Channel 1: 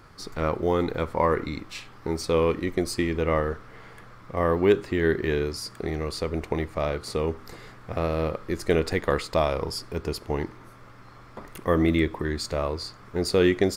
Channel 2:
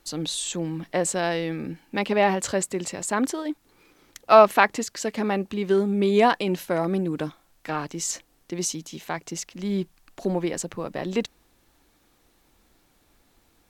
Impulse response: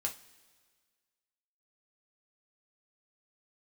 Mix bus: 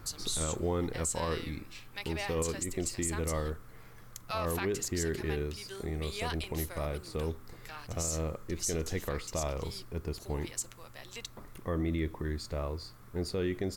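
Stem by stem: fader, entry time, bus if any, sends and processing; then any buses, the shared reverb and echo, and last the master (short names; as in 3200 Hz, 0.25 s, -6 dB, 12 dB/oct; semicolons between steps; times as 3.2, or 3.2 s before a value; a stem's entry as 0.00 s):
-3.0 dB, 0.00 s, no send, low shelf 180 Hz +9.5 dB; auto duck -8 dB, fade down 1.00 s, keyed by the second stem
-1.5 dB, 0.00 s, send -18.5 dB, differentiator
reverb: on, pre-delay 3 ms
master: limiter -22.5 dBFS, peak gain reduction 9 dB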